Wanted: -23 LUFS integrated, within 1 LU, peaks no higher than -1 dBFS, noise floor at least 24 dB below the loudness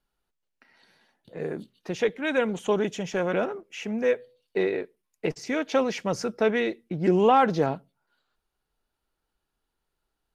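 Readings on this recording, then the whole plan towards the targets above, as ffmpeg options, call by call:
loudness -26.5 LUFS; peak -8.5 dBFS; loudness target -23.0 LUFS
-> -af "volume=3.5dB"

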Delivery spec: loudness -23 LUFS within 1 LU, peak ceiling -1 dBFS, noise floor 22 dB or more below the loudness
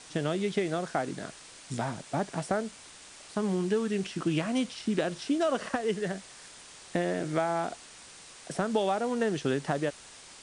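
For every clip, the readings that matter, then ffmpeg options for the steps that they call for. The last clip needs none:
noise floor -50 dBFS; noise floor target -53 dBFS; loudness -31.0 LUFS; peak -14.0 dBFS; loudness target -23.0 LUFS
-> -af "afftdn=nr=6:nf=-50"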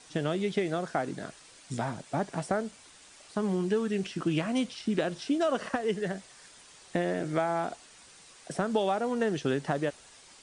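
noise floor -55 dBFS; loudness -31.0 LUFS; peak -14.5 dBFS; loudness target -23.0 LUFS
-> -af "volume=8dB"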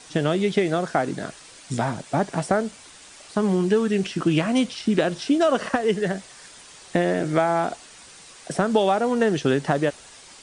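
loudness -23.0 LUFS; peak -6.5 dBFS; noise floor -47 dBFS

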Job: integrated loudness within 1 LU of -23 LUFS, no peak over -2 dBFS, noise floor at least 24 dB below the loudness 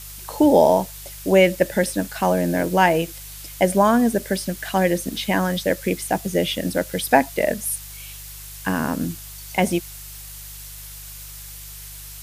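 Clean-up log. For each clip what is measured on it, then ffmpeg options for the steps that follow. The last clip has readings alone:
hum 50 Hz; harmonics up to 150 Hz; hum level -40 dBFS; noise floor -38 dBFS; noise floor target -45 dBFS; loudness -20.5 LUFS; peak -2.0 dBFS; loudness target -23.0 LUFS
-> -af "bandreject=f=50:t=h:w=4,bandreject=f=100:t=h:w=4,bandreject=f=150:t=h:w=4"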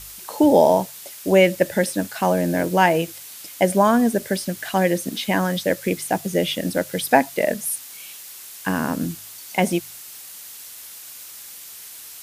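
hum none; noise floor -40 dBFS; noise floor target -45 dBFS
-> -af "afftdn=nr=6:nf=-40"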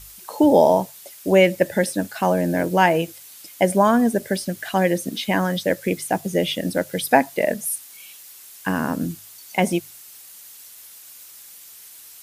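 noise floor -44 dBFS; noise floor target -45 dBFS
-> -af "afftdn=nr=6:nf=-44"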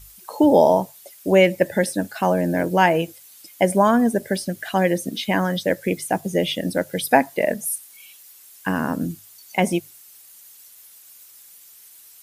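noise floor -48 dBFS; loudness -21.0 LUFS; peak -2.0 dBFS; loudness target -23.0 LUFS
-> -af "volume=-2dB"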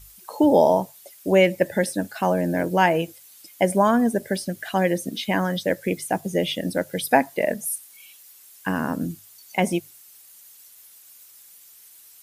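loudness -23.0 LUFS; peak -4.0 dBFS; noise floor -50 dBFS

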